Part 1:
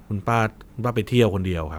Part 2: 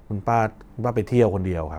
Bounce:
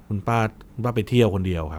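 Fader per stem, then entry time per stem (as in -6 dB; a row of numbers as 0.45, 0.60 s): -1.5, -11.0 dB; 0.00, 0.00 s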